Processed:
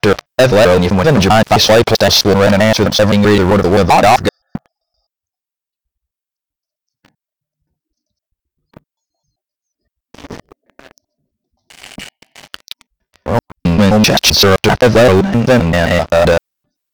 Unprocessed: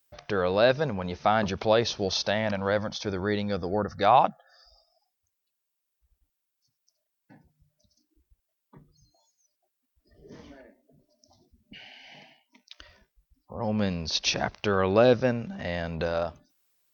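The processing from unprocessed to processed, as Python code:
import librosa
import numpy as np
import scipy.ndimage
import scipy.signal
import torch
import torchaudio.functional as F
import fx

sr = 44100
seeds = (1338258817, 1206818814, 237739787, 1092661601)

y = fx.block_reorder(x, sr, ms=130.0, group=3)
y = fx.leveller(y, sr, passes=5)
y = F.gain(torch.from_numpy(y), 4.0).numpy()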